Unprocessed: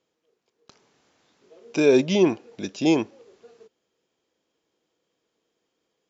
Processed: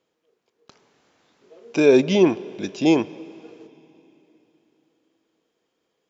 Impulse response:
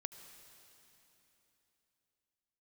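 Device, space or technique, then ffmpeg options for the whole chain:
filtered reverb send: -filter_complex "[0:a]asplit=2[a][b];[b]highpass=f=150:p=1,lowpass=4.2k[c];[1:a]atrim=start_sample=2205[d];[c][d]afir=irnorm=-1:irlink=0,volume=-4dB[e];[a][e]amix=inputs=2:normalize=0"

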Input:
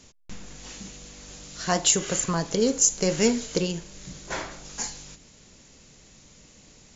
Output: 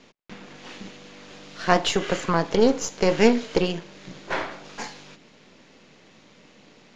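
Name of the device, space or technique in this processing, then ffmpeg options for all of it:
crystal radio: -af "highpass=210,lowpass=3.3k,aeval=exprs='if(lt(val(0),0),0.447*val(0),val(0))':c=same,lowpass=5.8k,volume=8dB"

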